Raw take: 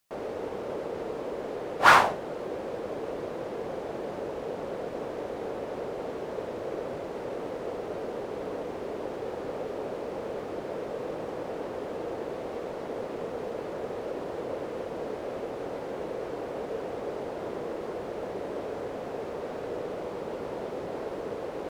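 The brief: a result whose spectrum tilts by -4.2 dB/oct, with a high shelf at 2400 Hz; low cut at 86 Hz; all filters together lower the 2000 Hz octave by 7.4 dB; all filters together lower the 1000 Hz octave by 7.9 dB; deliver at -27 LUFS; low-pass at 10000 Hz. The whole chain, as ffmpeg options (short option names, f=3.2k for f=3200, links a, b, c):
-af "highpass=86,lowpass=10k,equalizer=f=1k:t=o:g=-8,equalizer=f=2k:t=o:g=-3.5,highshelf=f=2.4k:g=-6.5,volume=9.5dB"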